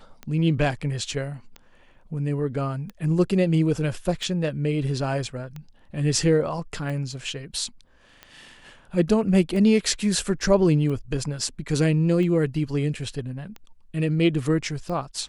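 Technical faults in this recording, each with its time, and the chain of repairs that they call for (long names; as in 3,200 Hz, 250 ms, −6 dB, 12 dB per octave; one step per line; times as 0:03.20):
scratch tick 45 rpm −23 dBFS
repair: click removal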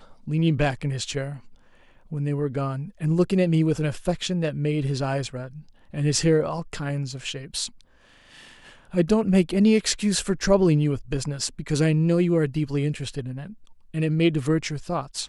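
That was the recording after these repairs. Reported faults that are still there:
none of them is left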